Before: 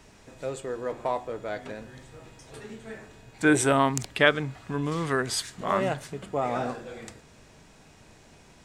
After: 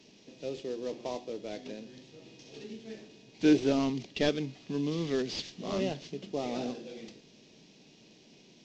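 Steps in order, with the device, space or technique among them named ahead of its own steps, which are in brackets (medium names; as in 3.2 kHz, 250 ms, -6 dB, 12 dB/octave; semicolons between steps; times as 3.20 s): early wireless headset (high-pass 170 Hz 24 dB/octave; CVSD coder 32 kbps); FFT filter 360 Hz 0 dB, 1.4 kHz -19 dB, 2.8 kHz -1 dB; 2.22–2.64 s: flutter echo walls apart 10.8 m, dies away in 0.64 s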